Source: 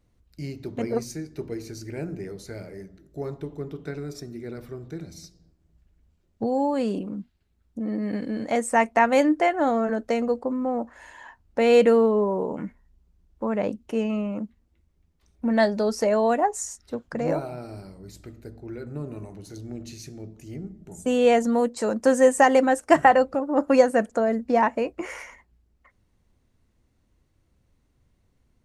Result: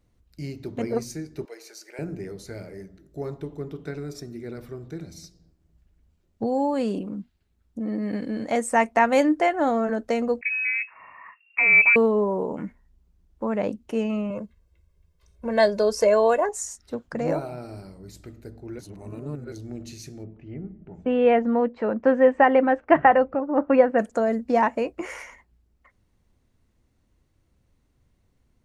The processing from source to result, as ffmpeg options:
-filter_complex "[0:a]asettb=1/sr,asplit=3[a][b][c];[a]atrim=end=1.454[d];[b]atrim=start=1.45:end=1.99,asetpts=PTS-STARTPTS,afade=t=in:d=0.004:c=qsin,afade=t=out:st=0.536:d=0.004:c=qsin,highpass=f=540:w=0.5412,highpass=f=540:w=1.3066[e];[c]atrim=start=1.986[f];[d][e]acrossfade=d=0.004:c1=hsin:c2=qsin[g];[g][f]acrossfade=d=0.004:c1=qsin:c2=hsin,asettb=1/sr,asplit=3[h][i][j];[h]atrim=end=10.414[k];[i]atrim=start=10.41:end=11.96,asetpts=PTS-STARTPTS,afade=t=in:d=0.004:c=qsin,afade=t=out:st=1.546:d=0.004:c=qsin,lowpass=f=2.4k:t=q:w=0.5098,lowpass=f=2.4k:t=q:w=0.6013,lowpass=f=2.4k:t=q:w=0.9,lowpass=f=2.4k:t=q:w=2.563,afreqshift=-2800[l];[j]atrim=start=11.956[m];[k][l]acrossfade=d=0.004:c1=hsin:c2=qsin[n];[n][m]acrossfade=d=0.004:c1=qsin:c2=hsin,asettb=1/sr,asplit=3[o][p][q];[o]atrim=end=14.304[r];[p]atrim=start=14.3:end=16.49,asetpts=PTS-STARTPTS,afade=t=in:d=0.004:c=qsin,afade=t=out:st=2.186:d=0.004:c=qsin,aecho=1:1:1.9:0.82,atrim=end_sample=96579[s];[q]atrim=start=16.486[t];[r][s]acrossfade=d=0.004:c1=hsin:c2=qsin[u];[u][t]acrossfade=d=0.004:c1=qsin:c2=hsin,asplit=3[v][w][x];[v]afade=t=out:st=20.23:d=0.02[y];[w]lowpass=f=2.6k:w=0.5412,lowpass=f=2.6k:w=1.3066,afade=t=in:st=20.23:d=0.02,afade=t=out:st=23.98:d=0.02[z];[x]afade=t=in:st=23.98:d=0.02[aa];[y][z][aa]amix=inputs=3:normalize=0,asplit=3[ab][ac][ad];[ab]atrim=end=18.792[ae];[ac]atrim=start=18.788:end=19.522,asetpts=PTS-STARTPTS,areverse[af];[ad]atrim=start=19.518[ag];[ae][af]acrossfade=d=0.004:c1=hsin:c2=hsin[ah];[ah][ag]acrossfade=d=0.004:c1=hsin:c2=hsin"

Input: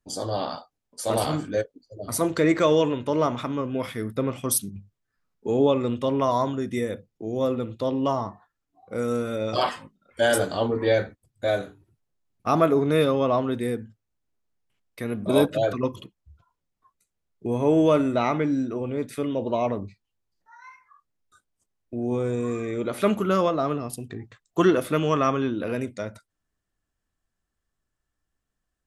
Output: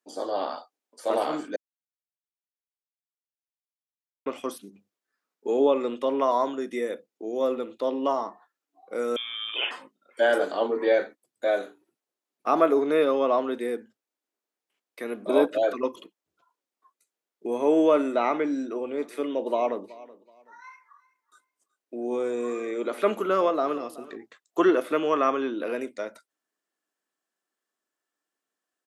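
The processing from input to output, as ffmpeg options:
-filter_complex "[0:a]asettb=1/sr,asplit=3[a][b][c];[a]atrim=end=9.164[d];[b]atrim=start=9.16:end=9.71,asetpts=PTS-STARTPTS,afade=t=in:d=0.004:c=qsin,afade=t=out:st=0.546:d=0.004:c=qsin,lowpass=f=3.1k:t=q:w=0.5098,lowpass=f=3.1k:t=q:w=0.6013,lowpass=f=3.1k:t=q:w=0.9,lowpass=f=3.1k:t=q:w=2.563,afreqshift=-3700[e];[c]atrim=start=9.706[f];[d][e]acrossfade=d=0.004:c1=hsin:c2=qsin[g];[g][f]acrossfade=d=0.004:c1=qsin:c2=hsin,asplit=3[h][i][j];[h]afade=t=out:st=18.98:d=0.02[k];[i]aecho=1:1:376|752:0.1|0.026,afade=t=in:st=18.98:d=0.02,afade=t=out:st=24.15:d=0.02[l];[j]afade=t=in:st=24.15:d=0.02[m];[k][l][m]amix=inputs=3:normalize=0,asplit=3[n][o][p];[n]atrim=end=1.56,asetpts=PTS-STARTPTS,afade=t=out:st=1.556:d=0.004:c=hsin[q];[o]atrim=start=1.56:end=4.26,asetpts=PTS-STARTPTS,volume=0[r];[p]atrim=start=4.26,asetpts=PTS-STARTPTS,afade=t=in:d=0.004:c=hsin[s];[q][r][s]concat=n=3:v=0:a=1,highpass=f=290:w=0.5412,highpass=f=290:w=1.3066,acrossover=split=2800[t][u];[u]acompressor=threshold=-47dB:ratio=4:attack=1:release=60[v];[t][v]amix=inputs=2:normalize=0"

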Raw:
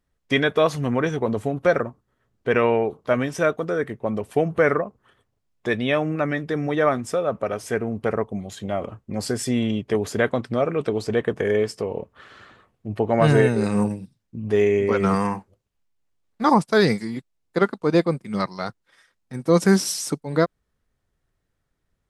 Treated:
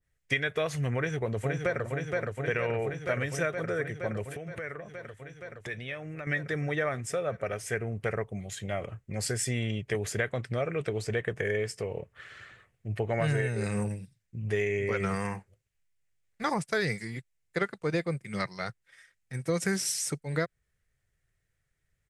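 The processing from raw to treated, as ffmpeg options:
-filter_complex "[0:a]asplit=2[a][b];[b]afade=t=in:st=0.96:d=0.01,afade=t=out:st=1.84:d=0.01,aecho=0:1:470|940|1410|1880|2350|2820|3290|3760|4230|4700|5170|5640:0.562341|0.449873|0.359898|0.287919|0.230335|0.184268|0.147414|0.117932|0.0943452|0.0754762|0.0603809|0.0483048[c];[a][c]amix=inputs=2:normalize=0,asettb=1/sr,asplit=3[d][e][f];[d]atrim=end=4.304[g];[e]atrim=start=4.3:end=6.27,asetpts=PTS-STARTPTS,afade=t=in:d=0.004:c=qsin,afade=t=out:st=1.966:d=0.004:c=qsin,acompressor=threshold=-30dB:ratio=5:attack=3.2:release=140:knee=1:detection=peak[h];[f]atrim=start=6.266[i];[g][h]acrossfade=d=0.004:c1=hsin:c2=qsin[j];[j][i]acrossfade=d=0.004:c1=qsin:c2=hsin,equalizer=f=125:t=o:w=1:g=5,equalizer=f=250:t=o:w=1:g=-11,equalizer=f=1k:t=o:w=1:g=-9,equalizer=f=2k:t=o:w=1:g=9,equalizer=f=4k:t=o:w=1:g=-3,equalizer=f=8k:t=o:w=1:g=6,acompressor=threshold=-21dB:ratio=6,adynamicequalizer=threshold=0.0112:dfrequency=1500:dqfactor=0.7:tfrequency=1500:tqfactor=0.7:attack=5:release=100:ratio=0.375:range=1.5:mode=cutabove:tftype=highshelf,volume=-3.5dB"

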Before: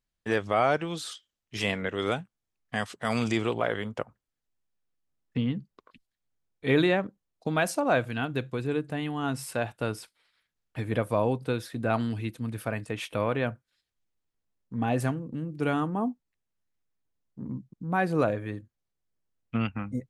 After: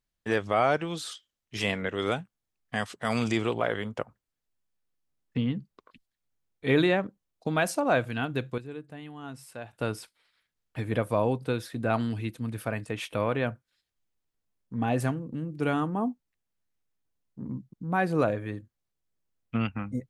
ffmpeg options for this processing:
-filter_complex "[0:a]asplit=3[a][b][c];[a]atrim=end=8.582[d];[b]atrim=start=8.578:end=9.732,asetpts=PTS-STARTPTS,volume=-11dB[e];[c]atrim=start=9.728[f];[d][e]acrossfade=d=0.004:c1=hsin:c2=hsin[g];[g][f]acrossfade=d=0.004:c1=hsin:c2=hsin"

